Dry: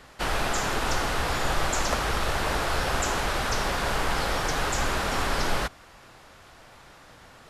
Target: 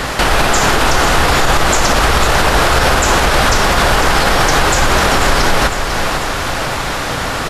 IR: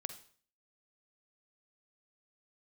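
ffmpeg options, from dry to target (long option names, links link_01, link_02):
-af "acompressor=threshold=-43dB:ratio=3,aecho=1:1:498|996|1494|1992|2490|2988:0.335|0.178|0.0941|0.0499|0.0264|0.014,alimiter=level_in=32dB:limit=-1dB:release=50:level=0:latency=1,volume=-1dB"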